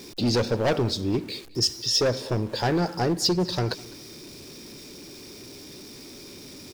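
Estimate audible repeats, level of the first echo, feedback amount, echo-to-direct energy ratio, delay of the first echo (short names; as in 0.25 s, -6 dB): 2, -22.5 dB, 29%, -22.0 dB, 0.207 s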